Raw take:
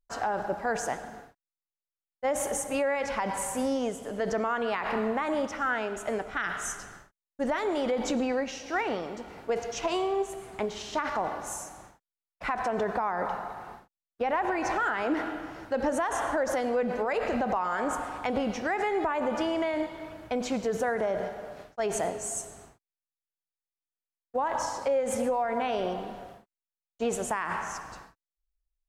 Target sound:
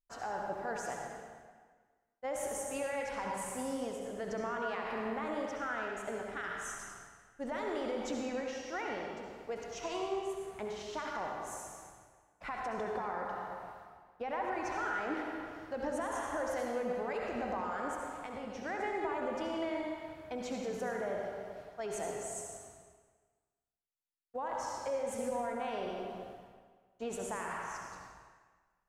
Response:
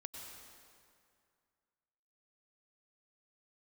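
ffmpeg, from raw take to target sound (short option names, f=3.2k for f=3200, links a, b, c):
-filter_complex "[0:a]asettb=1/sr,asplit=3[a][b][c];[a]atrim=end=17.934[d];[b]atrim=start=17.93:end=18.58,asetpts=PTS-STARTPTS,afade=t=in:d=0.004:c=qsin,afade=t=out:st=0.646:d=0.004:c=qsin,acompressor=threshold=-34dB:ratio=2.5[e];[c]atrim=start=18.576[f];[d][e]acrossfade=d=0.004:c1=hsin:c2=qsin[g];[g][f]acrossfade=d=0.004:c1=qsin:c2=hsin[h];[1:a]atrim=start_sample=2205,asetrate=66150,aresample=44100[i];[h][i]afir=irnorm=-1:irlink=0,volume=-1dB"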